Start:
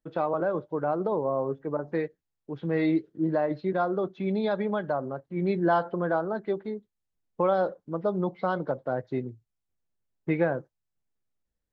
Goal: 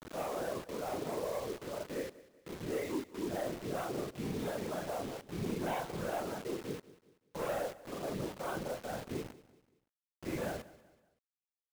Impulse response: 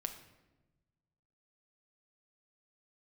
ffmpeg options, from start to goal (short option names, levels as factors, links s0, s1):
-af "afftfilt=real='re':imag='-im':win_size=4096:overlap=0.75,highpass=f=54:w=0.5412,highpass=f=54:w=1.3066,aresample=8000,volume=25.1,asoftclip=hard,volume=0.0398,aresample=44100,afftfilt=real='hypot(re,im)*cos(2*PI*random(0))':imag='hypot(re,im)*sin(2*PI*random(1))':win_size=512:overlap=0.75,acrusher=bits=7:mix=0:aa=0.000001,aecho=1:1:190|380|570:0.112|0.0438|0.0171,volume=1.12"